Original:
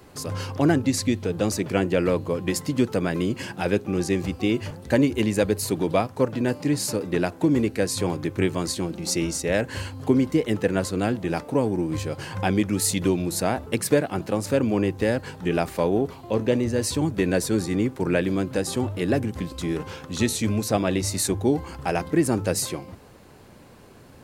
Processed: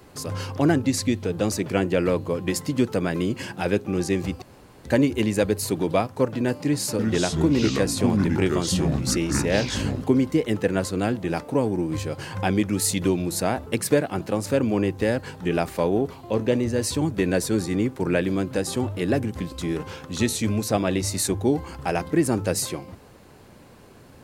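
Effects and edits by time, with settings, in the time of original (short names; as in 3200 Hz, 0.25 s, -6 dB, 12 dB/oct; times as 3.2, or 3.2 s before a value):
4.42–4.84 room tone
6.65–10.04 echoes that change speed 0.336 s, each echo -5 st, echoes 2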